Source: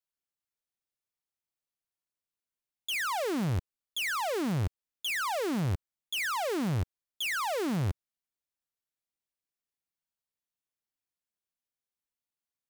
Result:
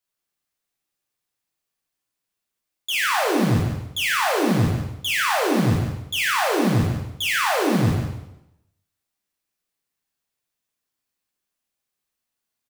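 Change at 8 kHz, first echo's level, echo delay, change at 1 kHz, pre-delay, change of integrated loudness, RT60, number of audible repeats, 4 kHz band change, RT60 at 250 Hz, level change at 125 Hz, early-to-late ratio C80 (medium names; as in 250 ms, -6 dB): +10.5 dB, -8.5 dB, 144 ms, +10.5 dB, 5 ms, +10.5 dB, 0.85 s, 1, +10.0 dB, 0.85 s, +10.5 dB, 3.5 dB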